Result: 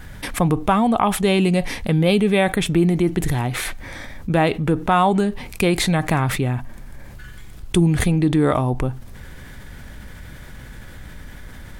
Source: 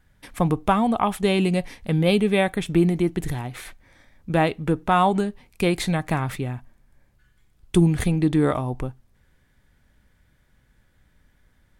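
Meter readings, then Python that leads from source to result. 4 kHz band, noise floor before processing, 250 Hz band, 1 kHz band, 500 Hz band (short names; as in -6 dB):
+5.0 dB, -63 dBFS, +3.0 dB, +3.0 dB, +3.0 dB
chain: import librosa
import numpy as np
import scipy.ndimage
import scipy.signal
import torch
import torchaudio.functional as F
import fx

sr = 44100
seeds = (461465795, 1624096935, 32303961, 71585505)

y = fx.env_flatten(x, sr, amount_pct=50)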